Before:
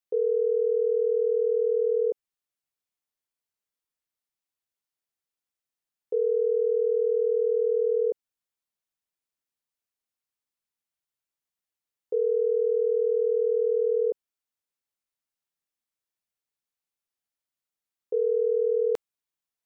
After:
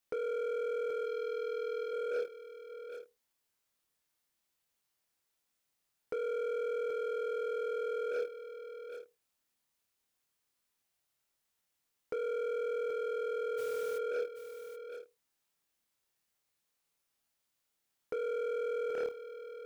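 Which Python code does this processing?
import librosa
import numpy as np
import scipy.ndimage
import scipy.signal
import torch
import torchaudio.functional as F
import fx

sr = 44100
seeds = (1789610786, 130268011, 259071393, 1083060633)

y = fx.room_flutter(x, sr, wall_m=4.6, rt60_s=0.28)
y = fx.leveller(y, sr, passes=2)
y = fx.over_compress(y, sr, threshold_db=-27.0, ratio=-0.5)
y = 10.0 ** (-31.5 / 20.0) * np.tanh(y / 10.0 ** (-31.5 / 20.0))
y = fx.fixed_phaser(y, sr, hz=310.0, stages=4, at=(1.05, 1.91), fade=0.02)
y = fx.dmg_noise_colour(y, sr, seeds[0], colour='white', level_db=-52.0, at=(13.57, 13.97), fade=0.02)
y = y + 10.0 ** (-11.0 / 20.0) * np.pad(y, (int(780 * sr / 1000.0), 0))[:len(y)]
y = fx.slew_limit(y, sr, full_power_hz=30.0)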